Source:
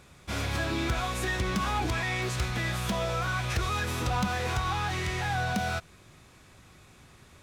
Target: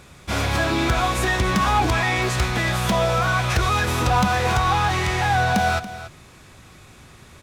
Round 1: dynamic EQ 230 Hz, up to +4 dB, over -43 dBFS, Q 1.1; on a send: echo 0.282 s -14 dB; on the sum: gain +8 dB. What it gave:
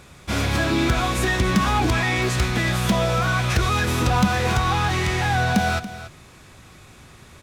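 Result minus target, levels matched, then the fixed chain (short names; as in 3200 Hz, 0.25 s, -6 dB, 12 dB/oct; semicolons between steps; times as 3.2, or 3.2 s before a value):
250 Hz band +3.5 dB
dynamic EQ 830 Hz, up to +4 dB, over -43 dBFS, Q 1.1; on a send: echo 0.282 s -14 dB; on the sum: gain +8 dB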